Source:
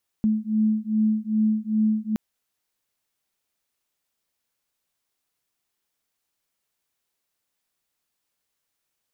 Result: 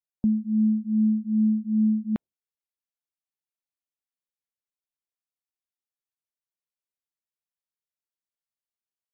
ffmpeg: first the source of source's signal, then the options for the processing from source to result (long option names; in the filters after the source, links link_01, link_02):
-f lavfi -i "aevalsrc='0.075*(sin(2*PI*215*t)+sin(2*PI*217.5*t))':duration=1.92:sample_rate=44100"
-af "afftdn=noise_reduction=21:noise_floor=-49"